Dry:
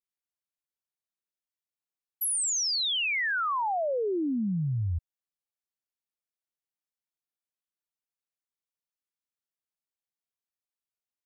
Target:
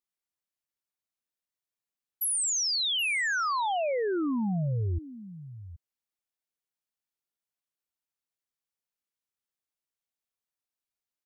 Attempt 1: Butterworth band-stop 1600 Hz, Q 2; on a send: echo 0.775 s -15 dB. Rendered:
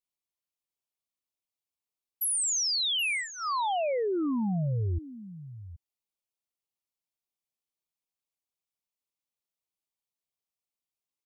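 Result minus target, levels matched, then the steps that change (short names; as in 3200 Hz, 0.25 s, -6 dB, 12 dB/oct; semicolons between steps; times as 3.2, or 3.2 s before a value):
2000 Hz band -4.0 dB
remove: Butterworth band-stop 1600 Hz, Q 2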